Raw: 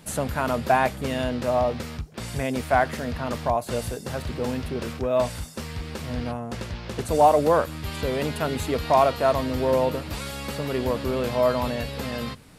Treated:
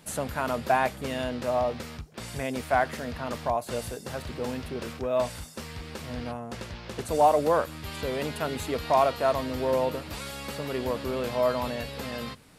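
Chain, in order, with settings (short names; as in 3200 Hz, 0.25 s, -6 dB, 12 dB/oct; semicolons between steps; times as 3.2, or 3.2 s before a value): low shelf 230 Hz -5 dB; gain -3 dB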